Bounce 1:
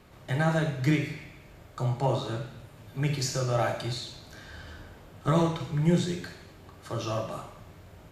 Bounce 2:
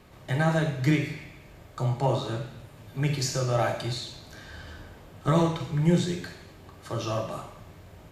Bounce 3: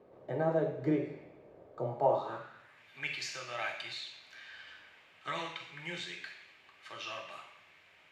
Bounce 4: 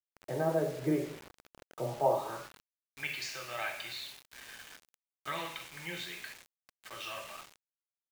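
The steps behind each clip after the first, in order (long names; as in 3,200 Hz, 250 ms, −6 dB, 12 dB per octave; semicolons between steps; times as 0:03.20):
notch filter 1,400 Hz, Q 20; level +1.5 dB
band-pass filter sweep 480 Hz → 2,400 Hz, 0:01.86–0:02.91; level +3 dB
bit reduction 8 bits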